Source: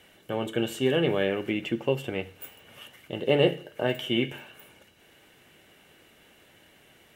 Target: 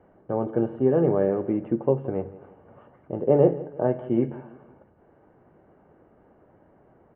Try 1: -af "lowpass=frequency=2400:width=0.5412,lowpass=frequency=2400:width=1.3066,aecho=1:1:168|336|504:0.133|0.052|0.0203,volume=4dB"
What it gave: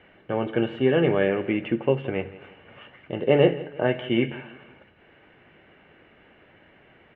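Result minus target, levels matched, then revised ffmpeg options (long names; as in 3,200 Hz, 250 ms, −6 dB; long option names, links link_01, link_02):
2,000 Hz band +16.0 dB
-af "lowpass=frequency=1100:width=0.5412,lowpass=frequency=1100:width=1.3066,aecho=1:1:168|336|504:0.133|0.052|0.0203,volume=4dB"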